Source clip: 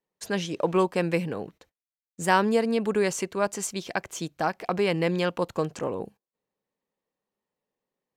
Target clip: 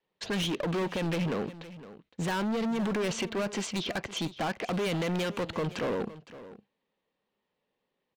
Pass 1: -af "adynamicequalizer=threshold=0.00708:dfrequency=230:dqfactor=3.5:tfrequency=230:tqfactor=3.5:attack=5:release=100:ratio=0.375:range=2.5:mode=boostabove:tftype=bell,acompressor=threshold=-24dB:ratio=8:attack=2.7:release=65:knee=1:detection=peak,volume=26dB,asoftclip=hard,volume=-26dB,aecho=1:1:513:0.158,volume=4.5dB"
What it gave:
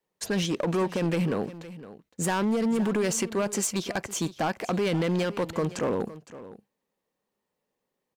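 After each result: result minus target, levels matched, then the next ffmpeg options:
4000 Hz band -4.5 dB; overloaded stage: distortion -6 dB
-af "adynamicequalizer=threshold=0.00708:dfrequency=230:dqfactor=3.5:tfrequency=230:tqfactor=3.5:attack=5:release=100:ratio=0.375:range=2.5:mode=boostabove:tftype=bell,lowpass=f=3.4k:t=q:w=1.8,acompressor=threshold=-24dB:ratio=8:attack=2.7:release=65:knee=1:detection=peak,volume=26dB,asoftclip=hard,volume=-26dB,aecho=1:1:513:0.158,volume=4.5dB"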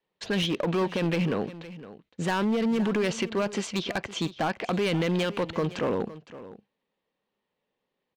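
overloaded stage: distortion -6 dB
-af "adynamicequalizer=threshold=0.00708:dfrequency=230:dqfactor=3.5:tfrequency=230:tqfactor=3.5:attack=5:release=100:ratio=0.375:range=2.5:mode=boostabove:tftype=bell,lowpass=f=3.4k:t=q:w=1.8,acompressor=threshold=-24dB:ratio=8:attack=2.7:release=65:knee=1:detection=peak,volume=32dB,asoftclip=hard,volume=-32dB,aecho=1:1:513:0.158,volume=4.5dB"

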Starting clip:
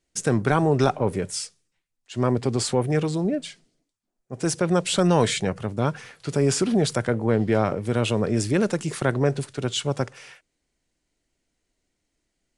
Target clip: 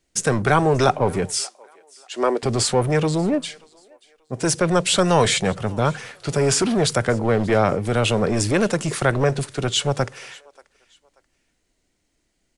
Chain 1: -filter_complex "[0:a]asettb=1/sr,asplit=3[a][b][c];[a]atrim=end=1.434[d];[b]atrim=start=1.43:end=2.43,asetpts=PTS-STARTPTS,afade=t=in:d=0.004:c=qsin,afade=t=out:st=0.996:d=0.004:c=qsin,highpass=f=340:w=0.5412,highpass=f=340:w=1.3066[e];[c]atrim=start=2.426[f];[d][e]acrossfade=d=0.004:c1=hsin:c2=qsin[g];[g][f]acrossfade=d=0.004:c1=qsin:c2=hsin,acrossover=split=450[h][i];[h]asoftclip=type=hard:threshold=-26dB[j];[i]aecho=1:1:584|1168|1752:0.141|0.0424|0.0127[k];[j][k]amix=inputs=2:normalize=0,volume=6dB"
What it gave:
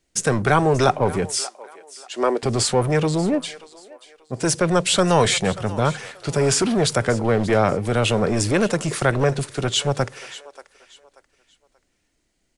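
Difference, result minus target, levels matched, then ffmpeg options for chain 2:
echo-to-direct +7 dB
-filter_complex "[0:a]asettb=1/sr,asplit=3[a][b][c];[a]atrim=end=1.434[d];[b]atrim=start=1.43:end=2.43,asetpts=PTS-STARTPTS,afade=t=in:d=0.004:c=qsin,afade=t=out:st=0.996:d=0.004:c=qsin,highpass=f=340:w=0.5412,highpass=f=340:w=1.3066[e];[c]atrim=start=2.426[f];[d][e]acrossfade=d=0.004:c1=hsin:c2=qsin[g];[g][f]acrossfade=d=0.004:c1=qsin:c2=hsin,acrossover=split=450[h][i];[h]asoftclip=type=hard:threshold=-26dB[j];[i]aecho=1:1:584|1168:0.0631|0.0189[k];[j][k]amix=inputs=2:normalize=0,volume=6dB"

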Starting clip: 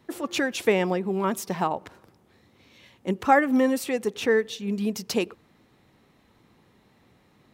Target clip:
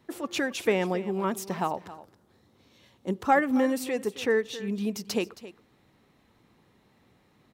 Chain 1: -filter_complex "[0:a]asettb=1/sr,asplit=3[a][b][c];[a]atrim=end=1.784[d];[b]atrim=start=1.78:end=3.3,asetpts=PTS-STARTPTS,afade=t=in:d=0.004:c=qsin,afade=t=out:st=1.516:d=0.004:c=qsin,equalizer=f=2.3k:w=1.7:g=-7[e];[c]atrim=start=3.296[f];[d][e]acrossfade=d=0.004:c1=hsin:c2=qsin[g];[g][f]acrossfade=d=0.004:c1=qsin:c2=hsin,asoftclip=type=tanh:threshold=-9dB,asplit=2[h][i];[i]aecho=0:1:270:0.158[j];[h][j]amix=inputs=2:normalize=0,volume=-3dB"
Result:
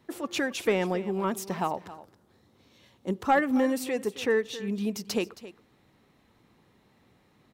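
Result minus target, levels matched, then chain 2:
soft clip: distortion +12 dB
-filter_complex "[0:a]asettb=1/sr,asplit=3[a][b][c];[a]atrim=end=1.784[d];[b]atrim=start=1.78:end=3.3,asetpts=PTS-STARTPTS,afade=t=in:d=0.004:c=qsin,afade=t=out:st=1.516:d=0.004:c=qsin,equalizer=f=2.3k:w=1.7:g=-7[e];[c]atrim=start=3.296[f];[d][e]acrossfade=d=0.004:c1=hsin:c2=qsin[g];[g][f]acrossfade=d=0.004:c1=qsin:c2=hsin,asoftclip=type=tanh:threshold=-1.5dB,asplit=2[h][i];[i]aecho=0:1:270:0.158[j];[h][j]amix=inputs=2:normalize=0,volume=-3dB"

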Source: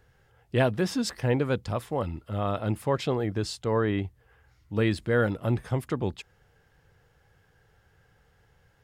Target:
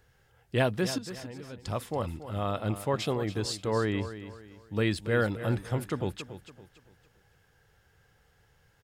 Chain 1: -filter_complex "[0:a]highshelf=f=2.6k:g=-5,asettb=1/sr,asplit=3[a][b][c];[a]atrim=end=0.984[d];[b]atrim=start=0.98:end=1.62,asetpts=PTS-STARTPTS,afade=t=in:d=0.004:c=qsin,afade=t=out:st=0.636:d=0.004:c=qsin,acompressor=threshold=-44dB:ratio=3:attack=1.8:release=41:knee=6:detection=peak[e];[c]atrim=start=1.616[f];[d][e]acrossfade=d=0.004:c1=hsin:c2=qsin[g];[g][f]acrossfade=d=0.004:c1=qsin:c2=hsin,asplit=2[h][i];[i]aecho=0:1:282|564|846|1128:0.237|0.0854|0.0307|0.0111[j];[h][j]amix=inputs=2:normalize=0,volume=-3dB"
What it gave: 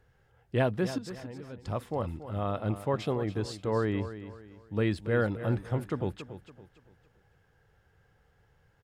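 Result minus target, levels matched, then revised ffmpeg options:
4000 Hz band -6.5 dB
-filter_complex "[0:a]highshelf=f=2.6k:g=6,asettb=1/sr,asplit=3[a][b][c];[a]atrim=end=0.984[d];[b]atrim=start=0.98:end=1.62,asetpts=PTS-STARTPTS,afade=t=in:d=0.004:c=qsin,afade=t=out:st=0.636:d=0.004:c=qsin,acompressor=threshold=-44dB:ratio=3:attack=1.8:release=41:knee=6:detection=peak[e];[c]atrim=start=1.616[f];[d][e]acrossfade=d=0.004:c1=hsin:c2=qsin[g];[g][f]acrossfade=d=0.004:c1=qsin:c2=hsin,asplit=2[h][i];[i]aecho=0:1:282|564|846|1128:0.237|0.0854|0.0307|0.0111[j];[h][j]amix=inputs=2:normalize=0,volume=-3dB"

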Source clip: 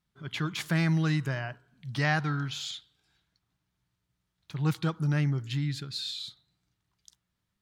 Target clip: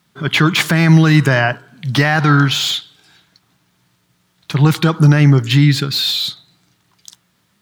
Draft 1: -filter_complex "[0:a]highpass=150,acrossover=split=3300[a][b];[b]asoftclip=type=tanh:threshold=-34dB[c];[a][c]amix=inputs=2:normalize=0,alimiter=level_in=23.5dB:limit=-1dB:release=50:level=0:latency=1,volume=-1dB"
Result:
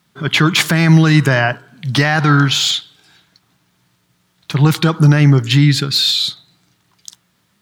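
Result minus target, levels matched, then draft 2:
soft clip: distortion -9 dB
-filter_complex "[0:a]highpass=150,acrossover=split=3300[a][b];[b]asoftclip=type=tanh:threshold=-43.5dB[c];[a][c]amix=inputs=2:normalize=0,alimiter=level_in=23.5dB:limit=-1dB:release=50:level=0:latency=1,volume=-1dB"

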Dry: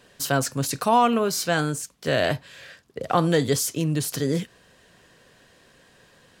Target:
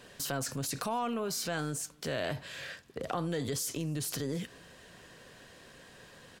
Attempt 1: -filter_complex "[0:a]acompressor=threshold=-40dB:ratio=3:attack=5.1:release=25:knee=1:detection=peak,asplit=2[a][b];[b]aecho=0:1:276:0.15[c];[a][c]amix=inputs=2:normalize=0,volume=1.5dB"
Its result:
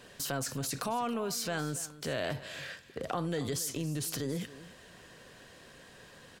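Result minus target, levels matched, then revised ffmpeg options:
echo-to-direct +11.5 dB
-filter_complex "[0:a]acompressor=threshold=-40dB:ratio=3:attack=5.1:release=25:knee=1:detection=peak,asplit=2[a][b];[b]aecho=0:1:276:0.0398[c];[a][c]amix=inputs=2:normalize=0,volume=1.5dB"

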